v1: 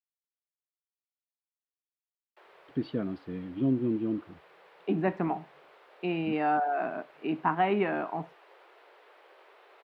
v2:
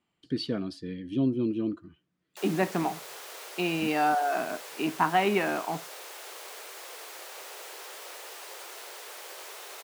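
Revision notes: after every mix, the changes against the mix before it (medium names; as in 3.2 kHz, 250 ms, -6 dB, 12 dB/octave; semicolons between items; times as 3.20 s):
speech: entry -2.45 s; background +8.0 dB; master: remove distance through air 480 m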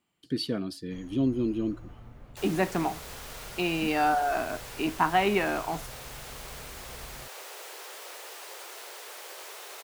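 speech: remove distance through air 65 m; first sound: unmuted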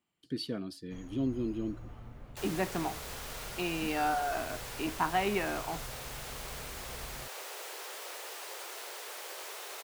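speech -6.0 dB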